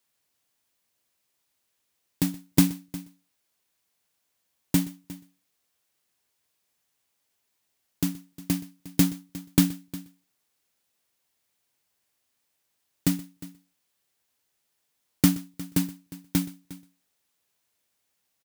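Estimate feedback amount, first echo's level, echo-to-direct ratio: no steady repeat, -20.0 dB, -16.0 dB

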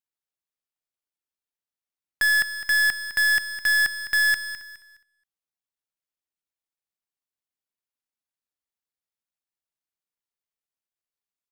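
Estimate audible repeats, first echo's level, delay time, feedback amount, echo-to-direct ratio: 3, -12.0 dB, 0.208 s, 30%, -11.5 dB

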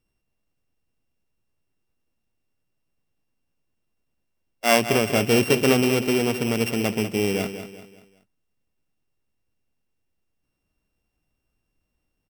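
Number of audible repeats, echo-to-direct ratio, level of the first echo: 4, -9.5 dB, -10.5 dB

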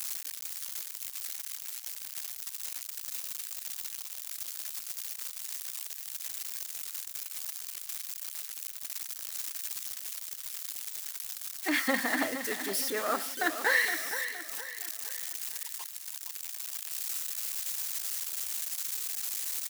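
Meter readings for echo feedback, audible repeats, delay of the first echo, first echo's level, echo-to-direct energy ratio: 42%, 4, 0.466 s, -10.0 dB, -9.0 dB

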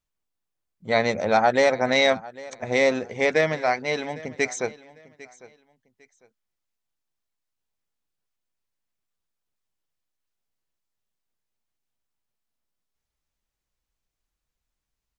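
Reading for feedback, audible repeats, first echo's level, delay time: 26%, 2, -20.0 dB, 0.801 s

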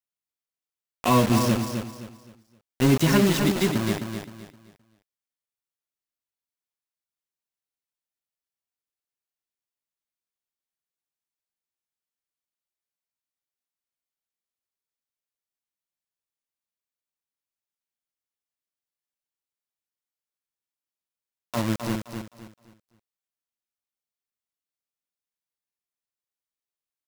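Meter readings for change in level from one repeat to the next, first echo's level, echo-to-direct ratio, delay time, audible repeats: -10.0 dB, -7.0 dB, -6.5 dB, 0.26 s, 3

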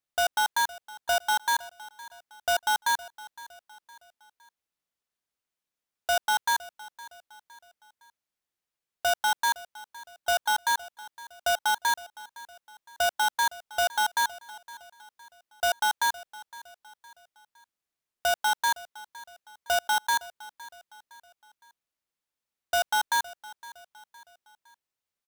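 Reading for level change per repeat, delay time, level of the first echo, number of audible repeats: -7.0 dB, 0.512 s, -19.0 dB, 3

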